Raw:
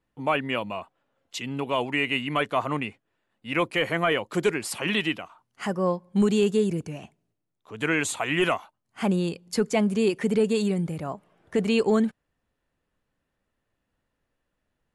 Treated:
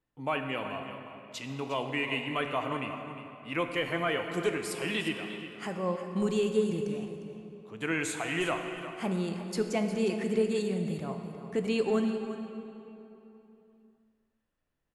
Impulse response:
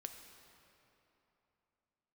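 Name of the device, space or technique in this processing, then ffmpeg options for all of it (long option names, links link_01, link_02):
cave: -filter_complex "[0:a]aecho=1:1:355:0.237[link_01];[1:a]atrim=start_sample=2205[link_02];[link_01][link_02]afir=irnorm=-1:irlink=0,volume=-2dB"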